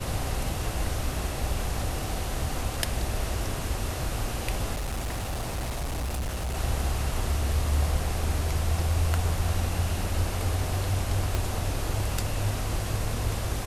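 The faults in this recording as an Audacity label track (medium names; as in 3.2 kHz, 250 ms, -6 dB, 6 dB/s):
4.740000	6.570000	clipped -27 dBFS
11.350000	11.350000	pop -13 dBFS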